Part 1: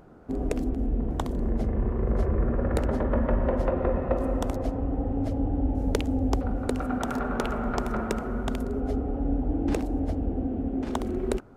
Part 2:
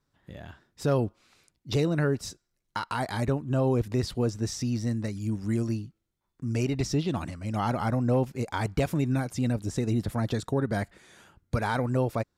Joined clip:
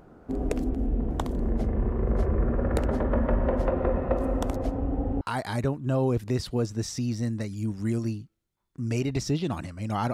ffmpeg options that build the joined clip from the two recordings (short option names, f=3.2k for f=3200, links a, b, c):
-filter_complex "[0:a]apad=whole_dur=10.13,atrim=end=10.13,atrim=end=5.212[a];[1:a]atrim=start=2.848:end=7.77[b];[a][b]acrossfade=d=0.004:c1=hsin:c2=hsin"